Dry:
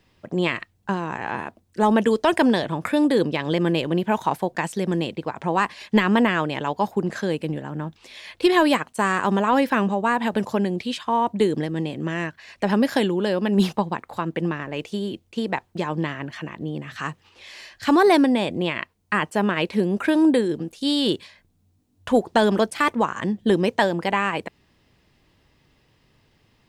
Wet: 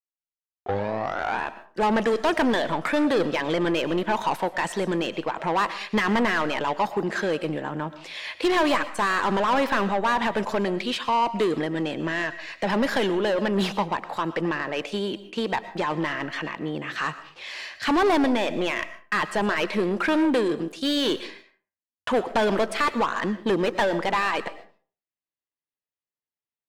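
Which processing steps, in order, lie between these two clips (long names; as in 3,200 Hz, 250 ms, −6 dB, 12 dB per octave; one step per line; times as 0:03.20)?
turntable start at the beginning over 1.45 s
mid-hump overdrive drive 21 dB, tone 3,000 Hz, clips at −8 dBFS
noise gate −42 dBFS, range −44 dB
convolution reverb RT60 0.40 s, pre-delay 75 ms, DRR 13.5 dB
level −6.5 dB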